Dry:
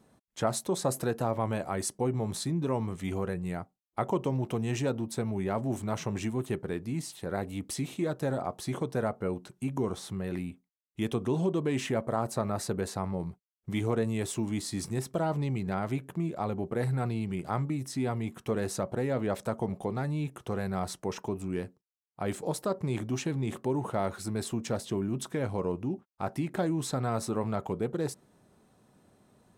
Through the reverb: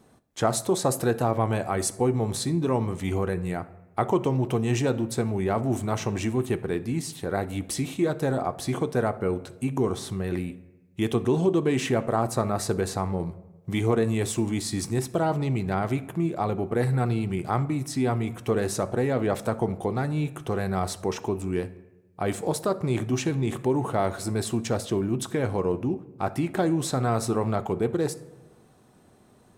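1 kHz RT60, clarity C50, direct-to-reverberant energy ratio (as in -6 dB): 1.0 s, 16.5 dB, 11.0 dB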